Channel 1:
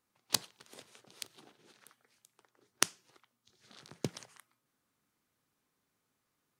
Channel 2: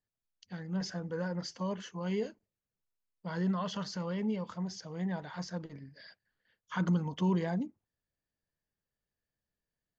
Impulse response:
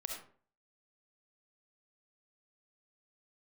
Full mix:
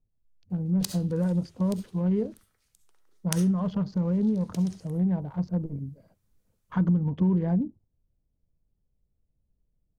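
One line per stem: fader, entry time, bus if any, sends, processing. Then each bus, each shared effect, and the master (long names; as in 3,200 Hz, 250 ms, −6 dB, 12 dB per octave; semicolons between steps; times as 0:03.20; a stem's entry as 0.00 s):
−1.5 dB, 0.50 s, send −9.5 dB, high-shelf EQ 4,200 Hz +9.5 dB; automatic ducking −12 dB, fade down 0.90 s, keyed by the second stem
+2.0 dB, 0.00 s, no send, adaptive Wiener filter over 25 samples; spectral tilt −4.5 dB per octave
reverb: on, RT60 0.45 s, pre-delay 25 ms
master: downward compressor 3 to 1, threshold −22 dBFS, peak gain reduction 8 dB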